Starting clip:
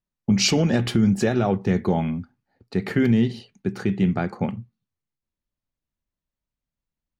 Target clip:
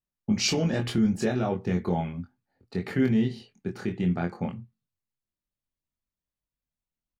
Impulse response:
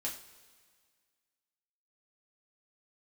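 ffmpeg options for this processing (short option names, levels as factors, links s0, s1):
-filter_complex "[0:a]asplit=2[s0][s1];[s1]adelay=23,volume=0.708[s2];[s0][s2]amix=inputs=2:normalize=0,volume=0.447"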